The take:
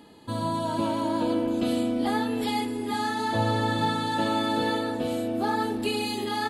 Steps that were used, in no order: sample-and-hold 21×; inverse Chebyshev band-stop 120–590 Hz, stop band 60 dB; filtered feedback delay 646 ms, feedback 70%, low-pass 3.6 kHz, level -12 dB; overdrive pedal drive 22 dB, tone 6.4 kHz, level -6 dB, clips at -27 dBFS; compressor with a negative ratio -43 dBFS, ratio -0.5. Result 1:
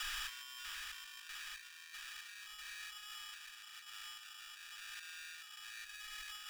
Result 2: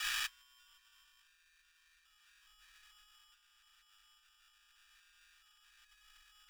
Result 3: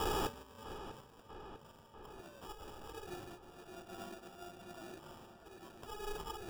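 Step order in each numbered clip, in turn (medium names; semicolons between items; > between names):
compressor with a negative ratio > filtered feedback delay > sample-and-hold > overdrive pedal > inverse Chebyshev band-stop; filtered feedback delay > sample-and-hold > overdrive pedal > compressor with a negative ratio > inverse Chebyshev band-stop; compressor with a negative ratio > inverse Chebyshev band-stop > overdrive pedal > sample-and-hold > filtered feedback delay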